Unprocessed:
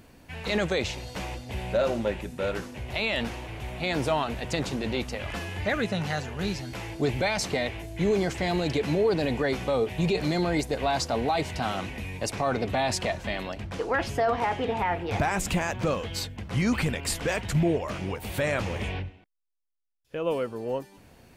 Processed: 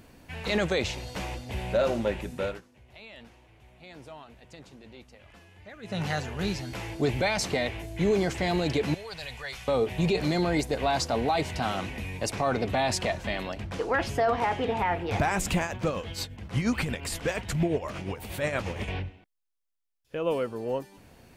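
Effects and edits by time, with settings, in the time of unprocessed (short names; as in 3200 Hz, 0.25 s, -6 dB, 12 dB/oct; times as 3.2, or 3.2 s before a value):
2.41–6.02 dip -19.5 dB, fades 0.20 s
8.94–9.68 passive tone stack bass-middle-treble 10-0-10
15.63–18.88 tremolo 8.5 Hz, depth 56%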